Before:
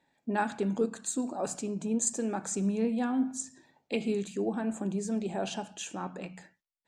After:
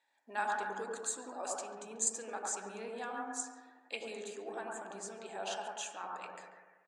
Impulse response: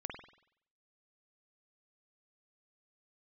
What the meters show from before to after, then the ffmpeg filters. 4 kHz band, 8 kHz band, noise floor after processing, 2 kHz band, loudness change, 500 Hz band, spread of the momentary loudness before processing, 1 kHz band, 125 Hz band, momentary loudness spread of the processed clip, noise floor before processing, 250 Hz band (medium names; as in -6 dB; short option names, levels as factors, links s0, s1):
-3.0 dB, -2.5 dB, -68 dBFS, -0.5 dB, -7.5 dB, -9.0 dB, 10 LU, -1.5 dB, under -20 dB, 11 LU, -80 dBFS, -20.5 dB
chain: -filter_complex "[0:a]highpass=850,asplit=2[s0][s1];[s1]adelay=140,highpass=300,lowpass=3400,asoftclip=type=hard:threshold=0.0562,volume=0.251[s2];[s0][s2]amix=inputs=2:normalize=0[s3];[1:a]atrim=start_sample=2205,asetrate=22491,aresample=44100[s4];[s3][s4]afir=irnorm=-1:irlink=0,volume=0.75"